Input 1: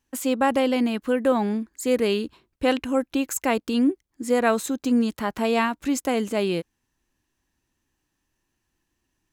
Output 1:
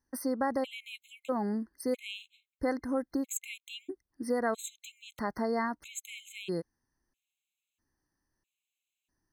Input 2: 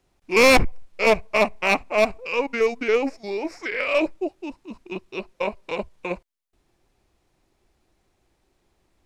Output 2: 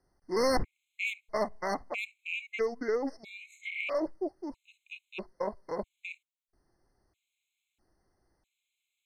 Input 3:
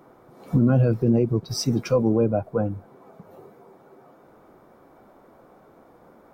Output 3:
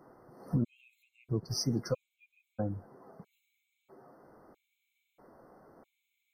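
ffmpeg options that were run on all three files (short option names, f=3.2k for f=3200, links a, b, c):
-af "acompressor=threshold=-23dB:ratio=2,afftfilt=real='re*gt(sin(2*PI*0.77*pts/sr)*(1-2*mod(floor(b*sr/1024/2100),2)),0)':imag='im*gt(sin(2*PI*0.77*pts/sr)*(1-2*mod(floor(b*sr/1024/2100),2)),0)':win_size=1024:overlap=0.75,volume=-5.5dB"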